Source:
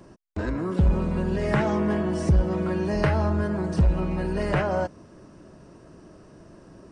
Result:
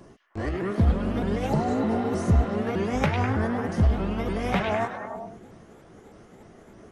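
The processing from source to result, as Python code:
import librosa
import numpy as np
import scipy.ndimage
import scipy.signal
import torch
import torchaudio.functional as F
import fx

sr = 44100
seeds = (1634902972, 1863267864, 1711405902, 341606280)

y = fx.pitch_ramps(x, sr, semitones=5.0, every_ms=306)
y = fx.echo_stepped(y, sr, ms=101, hz=3000.0, octaves=-0.7, feedback_pct=70, wet_db=-1)
y = fx.spec_repair(y, sr, seeds[0], start_s=1.51, length_s=0.98, low_hz=940.0, high_hz=3900.0, source='after')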